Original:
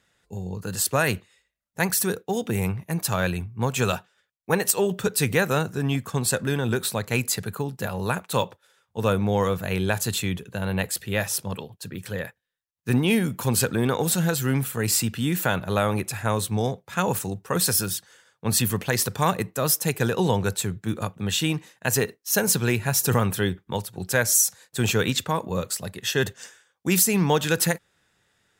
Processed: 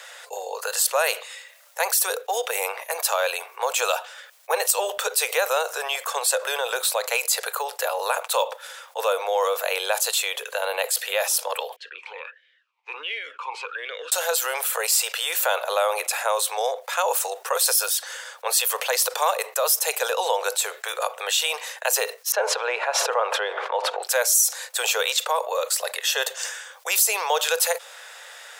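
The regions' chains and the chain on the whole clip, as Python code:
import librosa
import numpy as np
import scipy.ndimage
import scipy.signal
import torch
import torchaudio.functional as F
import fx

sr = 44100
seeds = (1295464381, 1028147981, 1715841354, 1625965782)

y = fx.chain(x, sr, fx.air_absorb(metres=110.0),
    fx.vowel_sweep(vowels='i-u', hz=1.4), at=(11.76, 14.12))
y = fx.chain(y, sr, fx.law_mismatch(coded='mu'),
    fx.lowpass(hz=1900.0, slope=12),
    fx.sustainer(db_per_s=27.0), at=(22.32, 24.03))
y = scipy.signal.sosfilt(scipy.signal.butter(12, 490.0, 'highpass', fs=sr, output='sos'), y)
y = fx.dynamic_eq(y, sr, hz=1800.0, q=2.1, threshold_db=-43.0, ratio=4.0, max_db=-7)
y = fx.env_flatten(y, sr, amount_pct=50)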